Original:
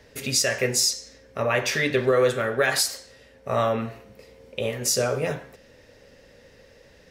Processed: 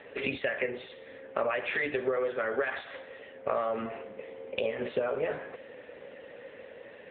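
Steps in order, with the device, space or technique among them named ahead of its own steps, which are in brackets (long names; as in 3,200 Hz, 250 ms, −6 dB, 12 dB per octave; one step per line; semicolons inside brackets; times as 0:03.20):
voicemail (band-pass filter 310–3,100 Hz; downward compressor 12 to 1, threshold −34 dBFS, peak gain reduction 18 dB; level +8 dB; AMR narrowband 7.95 kbit/s 8,000 Hz)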